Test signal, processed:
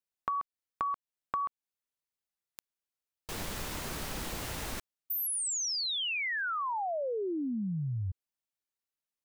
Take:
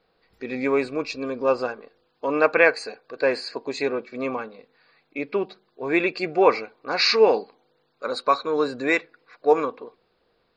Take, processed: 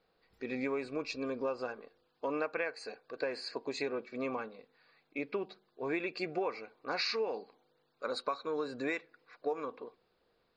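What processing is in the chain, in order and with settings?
compressor 10:1, threshold -24 dBFS; gain -7 dB

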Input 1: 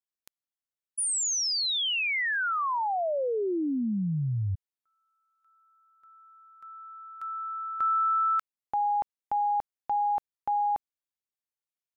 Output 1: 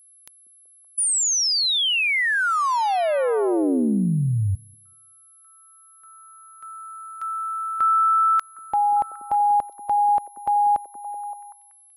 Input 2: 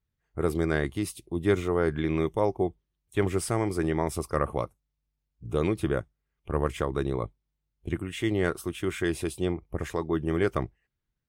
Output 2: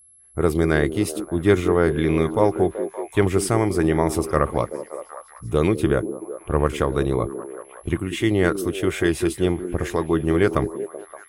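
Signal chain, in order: whine 11000 Hz -57 dBFS; delay with a stepping band-pass 0.19 s, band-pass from 290 Hz, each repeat 0.7 oct, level -7 dB; gain +7 dB

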